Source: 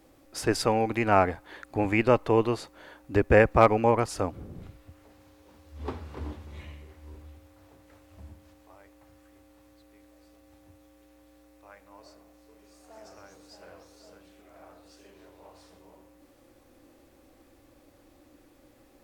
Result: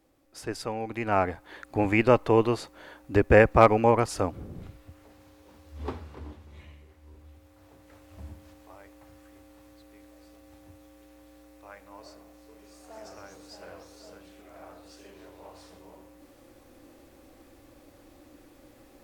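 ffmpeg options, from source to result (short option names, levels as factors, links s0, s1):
-af "volume=3.55,afade=t=in:st=0.77:d=1.04:silence=0.316228,afade=t=out:st=5.8:d=0.42:silence=0.446684,afade=t=in:st=7.14:d=1.11:silence=0.334965"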